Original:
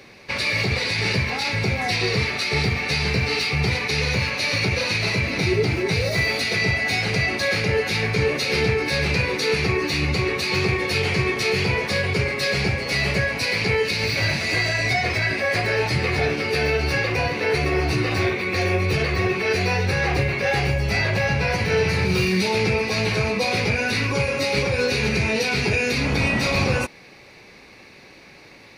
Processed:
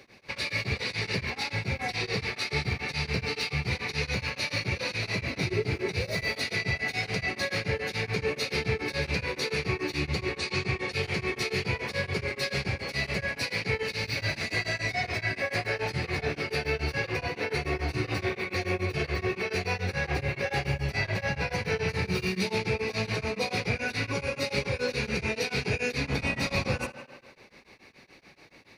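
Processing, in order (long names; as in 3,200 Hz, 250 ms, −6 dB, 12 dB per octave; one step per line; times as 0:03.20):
0:10.38–0:10.92: Butterworth low-pass 9,700 Hz 72 dB per octave
tape delay 82 ms, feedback 73%, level −10.5 dB, low-pass 5,600 Hz
tremolo along a rectified sine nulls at 7 Hz
level −6 dB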